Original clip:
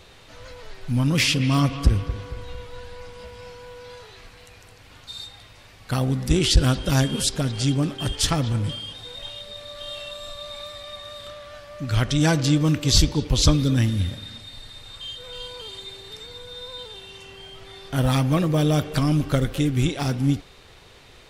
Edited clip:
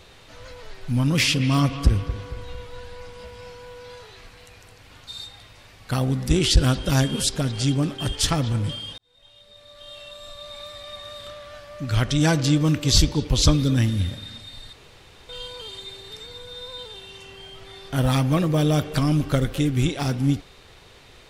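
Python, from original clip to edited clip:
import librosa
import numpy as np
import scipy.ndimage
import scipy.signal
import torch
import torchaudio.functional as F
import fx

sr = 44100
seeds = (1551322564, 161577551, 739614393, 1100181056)

y = fx.edit(x, sr, fx.fade_in_span(start_s=8.98, length_s=2.05),
    fx.room_tone_fill(start_s=14.73, length_s=0.56), tone=tone)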